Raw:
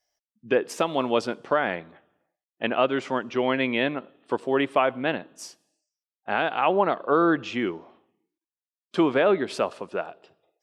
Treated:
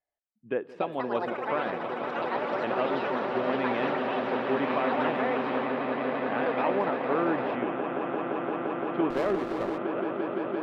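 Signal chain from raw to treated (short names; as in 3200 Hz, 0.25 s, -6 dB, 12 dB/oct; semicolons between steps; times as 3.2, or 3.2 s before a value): low-pass opened by the level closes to 3000 Hz, open at -20.5 dBFS; on a send: swelling echo 0.172 s, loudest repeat 8, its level -9.5 dB; on the sum: echoes that change speed 0.46 s, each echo +7 st, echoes 2; air absorption 450 m; 9.1–9.78 running maximum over 9 samples; gain -6.5 dB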